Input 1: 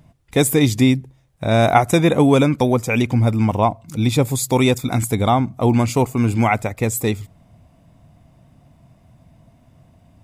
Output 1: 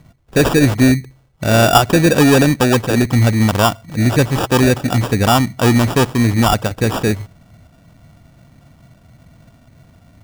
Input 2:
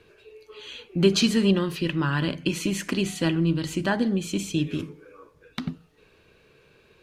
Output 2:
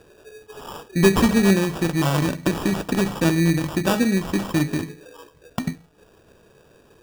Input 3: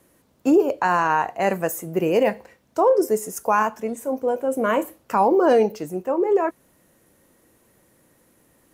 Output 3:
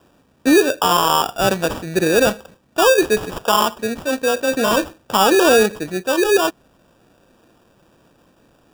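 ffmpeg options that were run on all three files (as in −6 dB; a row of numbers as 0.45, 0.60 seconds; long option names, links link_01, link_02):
-af "acrusher=samples=21:mix=1:aa=0.000001,acontrast=37,volume=-1dB"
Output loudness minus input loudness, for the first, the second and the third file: +3.5, +4.0, +4.5 LU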